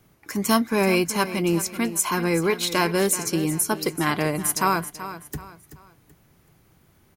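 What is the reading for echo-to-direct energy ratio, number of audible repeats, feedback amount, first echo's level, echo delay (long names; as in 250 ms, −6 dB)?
−12.5 dB, 3, 34%, −13.0 dB, 381 ms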